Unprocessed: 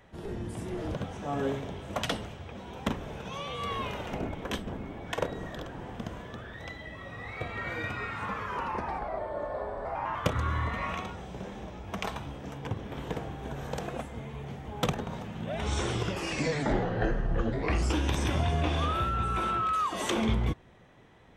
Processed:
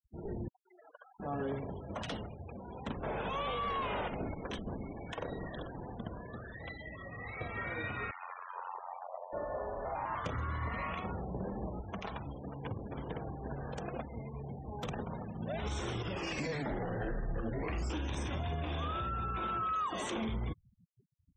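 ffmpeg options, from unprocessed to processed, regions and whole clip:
ffmpeg -i in.wav -filter_complex "[0:a]asettb=1/sr,asplit=3[link_01][link_02][link_03];[link_01]atrim=end=0.484[link_04];[link_02]atrim=start=0.48:end=1.2,asetpts=PTS-STARTPTS,afade=type=in:duration=0.004:curve=qsin,afade=type=out:start_time=0.716:duration=0.004:curve=qsin,highpass=1300,highshelf=frequency=2000:gain=-4.5[link_05];[link_03]atrim=start=1.196[link_06];[link_04][link_05]acrossfade=duration=0.004:curve1=hsin:curve2=qsin[link_07];[link_07][link_06]acrossfade=duration=0.004:curve1=qsin:curve2=hsin,asettb=1/sr,asplit=3[link_08][link_09][link_10];[link_08]atrim=end=3.034[link_11];[link_09]atrim=start=3.03:end=4.08,asetpts=PTS-STARTPTS,afade=type=in:duration=0.004:curve=qsin,afade=type=out:start_time=1.046:duration=0.004:curve=qsin,highshelf=frequency=11000:gain=10,asplit=2[link_12][link_13];[link_13]highpass=frequency=720:poles=1,volume=22dB,asoftclip=type=tanh:threshold=-21.5dB[link_14];[link_12][link_14]amix=inputs=2:normalize=0,lowpass=frequency=1200:poles=1,volume=-6dB,aeval=exprs='val(0)+0.00708*(sin(2*PI*50*n/s)+sin(2*PI*2*50*n/s)/2+sin(2*PI*3*50*n/s)/3+sin(2*PI*4*50*n/s)/4+sin(2*PI*5*50*n/s)/5)':channel_layout=same[link_15];[link_10]atrim=start=4.076[link_16];[link_11][link_15]acrossfade=duration=0.004:curve1=hsin:curve2=qsin[link_17];[link_17][link_16]acrossfade=duration=0.004:curve1=qsin:curve2=hsin,asettb=1/sr,asplit=3[link_18][link_19][link_20];[link_18]atrim=end=8.114[link_21];[link_19]atrim=start=8.11:end=9.33,asetpts=PTS-STARTPTS,afade=type=in:duration=0.004:curve=qsin,afade=type=out:start_time=1.216:duration=0.004:curve=qsin,highpass=frequency=600:width=0.5412,highpass=frequency=600:width=1.3066,equalizer=frequency=1600:width_type=o:width=1.3:gain=-3.5,tremolo=f=89:d=0.947[link_22];[link_20]atrim=start=9.326[link_23];[link_21][link_22]acrossfade=duration=0.004:curve1=hsin:curve2=qsin[link_24];[link_24][link_23]acrossfade=duration=0.004:curve1=qsin:curve2=hsin,asettb=1/sr,asplit=3[link_25][link_26][link_27];[link_25]atrim=end=11.044[link_28];[link_26]atrim=start=11.04:end=11.81,asetpts=PTS-STARTPTS,afade=type=in:duration=0.004:curve=qsin,afade=type=out:start_time=0.766:duration=0.004:curve=qsin,lowpass=frequency=1100:poles=1,acontrast=46[link_29];[link_27]atrim=start=11.806[link_30];[link_28][link_29]acrossfade=duration=0.004:curve1=hsin:curve2=qsin[link_31];[link_31][link_30]acrossfade=duration=0.004:curve1=qsin:curve2=hsin,afftfilt=real='re*gte(hypot(re,im),0.01)':imag='im*gte(hypot(re,im),0.01)':win_size=1024:overlap=0.75,alimiter=level_in=1.5dB:limit=-24dB:level=0:latency=1:release=51,volume=-1.5dB,volume=-3dB" out.wav

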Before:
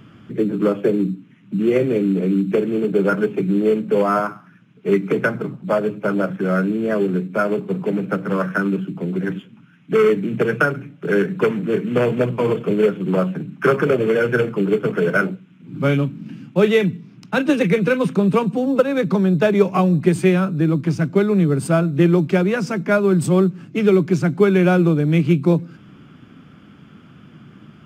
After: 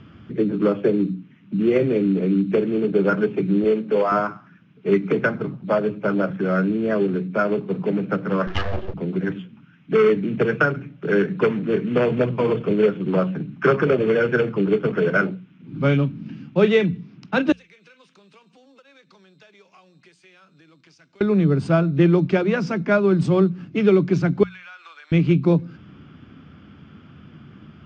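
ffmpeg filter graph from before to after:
ffmpeg -i in.wav -filter_complex "[0:a]asettb=1/sr,asplit=3[link_01][link_02][link_03];[link_01]atrim=end=3.644[link_04];[link_02]atrim=start=3.64:end=4.12,asetpts=PTS-STARTPTS,afade=type=in:duration=0.004:curve=qsin,afade=type=out:start_time=0.476:duration=0.004:curve=qsin,highpass=190,bandreject=frequency=50:width_type=h:width=6,bandreject=frequency=100:width_type=h:width=6,bandreject=frequency=150:width_type=h:width=6,bandreject=frequency=200:width_type=h:width=6,bandreject=frequency=250:width_type=h:width=6,bandreject=frequency=300:width_type=h:width=6,bandreject=frequency=350:width_type=h:width=6,bandreject=frequency=400:width_type=h:width=6,bandreject=frequency=450:width_type=h:width=6[link_05];[link_03]atrim=start=4.116[link_06];[link_04][link_05]acrossfade=duration=0.004:curve1=hsin:curve2=qsin[link_07];[link_07][link_06]acrossfade=duration=0.004:curve1=qsin:curve2=hsin,asettb=1/sr,asplit=3[link_08][link_09][link_10];[link_08]atrim=end=8.474[link_11];[link_09]atrim=start=8.47:end=8.94,asetpts=PTS-STARTPTS,afade=type=in:duration=0.004:curve=qsin,afade=type=out:start_time=0.466:duration=0.004:curve=qsin,bandreject=frequency=65.75:width_type=h:width=4,bandreject=frequency=131.5:width_type=h:width=4,bandreject=frequency=197.25:width_type=h:width=4,bandreject=frequency=263:width_type=h:width=4,bandreject=frequency=328.75:width_type=h:width=4,bandreject=frequency=394.5:width_type=h:width=4,bandreject=frequency=460.25:width_type=h:width=4,bandreject=frequency=526:width_type=h:width=4,bandreject=frequency=591.75:width_type=h:width=4,bandreject=frequency=657.5:width_type=h:width=4,bandreject=frequency=723.25:width_type=h:width=4,bandreject=frequency=789:width_type=h:width=4,bandreject=frequency=854.75:width_type=h:width=4,bandreject=frequency=920.5:width_type=h:width=4,bandreject=frequency=986.25:width_type=h:width=4,bandreject=frequency=1052:width_type=h:width=4,bandreject=frequency=1117.75:width_type=h:width=4,bandreject=frequency=1183.5:width_type=h:width=4,bandreject=frequency=1249.25:width_type=h:width=4,bandreject=frequency=1315:width_type=h:width=4,bandreject=frequency=1380.75:width_type=h:width=4,bandreject=frequency=1446.5:width_type=h:width=4,bandreject=frequency=1512.25:width_type=h:width=4,bandreject=frequency=1578:width_type=h:width=4,bandreject=frequency=1643.75:width_type=h:width=4,bandreject=frequency=1709.5:width_type=h:width=4,bandreject=frequency=1775.25:width_type=h:width=4,bandreject=frequency=1841:width_type=h:width=4,bandreject=frequency=1906.75:width_type=h:width=4,bandreject=frequency=1972.5:width_type=h:width=4,bandreject=frequency=2038.25:width_type=h:width=4,bandreject=frequency=2104:width_type=h:width=4,aeval=exprs='abs(val(0))':channel_layout=same[link_12];[link_10]atrim=start=8.936[link_13];[link_11][link_12]acrossfade=duration=0.004:curve1=hsin:curve2=qsin[link_14];[link_14][link_13]acrossfade=duration=0.004:curve1=qsin:curve2=hsin,asettb=1/sr,asplit=3[link_15][link_16][link_17];[link_15]atrim=end=17.524[link_18];[link_16]atrim=start=17.52:end=21.21,asetpts=PTS-STARTPTS,afade=type=in:duration=0.004:curve=qsin,afade=type=out:start_time=3.686:duration=0.004:curve=qsin,aderivative,acompressor=threshold=-48dB:ratio=4:attack=3.2:release=140:knee=1:detection=peak[link_19];[link_17]atrim=start=21.206[link_20];[link_18][link_19]acrossfade=duration=0.004:curve1=hsin:curve2=qsin[link_21];[link_21][link_20]acrossfade=duration=0.004:curve1=qsin:curve2=hsin,asettb=1/sr,asplit=3[link_22][link_23][link_24];[link_22]atrim=end=24.434[link_25];[link_23]atrim=start=24.43:end=25.12,asetpts=PTS-STARTPTS,afade=type=in:duration=0.004:curve=qsin,afade=type=out:start_time=0.686:duration=0.004:curve=qsin,highpass=frequency=1200:width=0.5412,highpass=frequency=1200:width=1.3066,acompressor=threshold=-38dB:ratio=5:attack=3.2:release=140:knee=1:detection=peak[link_26];[link_24]atrim=start=25.116[link_27];[link_25][link_26]acrossfade=duration=0.004:curve1=hsin:curve2=qsin[link_28];[link_28][link_27]acrossfade=duration=0.004:curve1=qsin:curve2=hsin,lowpass=frequency=5500:width=0.5412,lowpass=frequency=5500:width=1.3066,equalizer=frequency=74:width_type=o:width=0.8:gain=10.5,bandreject=frequency=60:width_type=h:width=6,bandreject=frequency=120:width_type=h:width=6,bandreject=frequency=180:width_type=h:width=6,volume=-1.5dB" out.wav

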